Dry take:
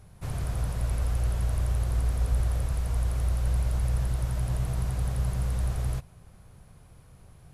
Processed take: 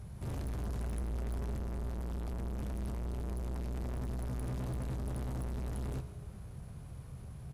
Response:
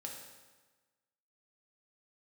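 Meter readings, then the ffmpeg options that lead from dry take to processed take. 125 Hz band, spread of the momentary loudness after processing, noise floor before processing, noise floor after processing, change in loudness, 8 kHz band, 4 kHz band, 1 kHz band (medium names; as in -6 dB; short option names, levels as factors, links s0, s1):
-10.0 dB, 10 LU, -53 dBFS, -48 dBFS, -10.5 dB, -12.0 dB, -10.5 dB, -6.5 dB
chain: -filter_complex "[0:a]highpass=f=61:p=1,lowshelf=f=310:g=9.5,asoftclip=type=tanh:threshold=0.015,asplit=2[s0][s1];[s1]adelay=15,volume=0.224[s2];[s0][s2]amix=inputs=2:normalize=0,asplit=2[s3][s4];[1:a]atrim=start_sample=2205,asetrate=33075,aresample=44100[s5];[s4][s5]afir=irnorm=-1:irlink=0,volume=0.447[s6];[s3][s6]amix=inputs=2:normalize=0,volume=0.794"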